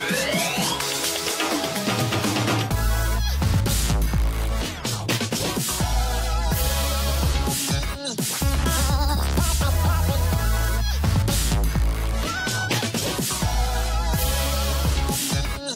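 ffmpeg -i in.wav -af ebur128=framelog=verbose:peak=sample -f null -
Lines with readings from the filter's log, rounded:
Integrated loudness:
  I:         -23.0 LUFS
  Threshold: -33.0 LUFS
Loudness range:
  LRA:         1.5 LU
  Threshold: -43.0 LUFS
  LRA low:   -23.6 LUFS
  LRA high:  -22.2 LUFS
Sample peak:
  Peak:       -9.5 dBFS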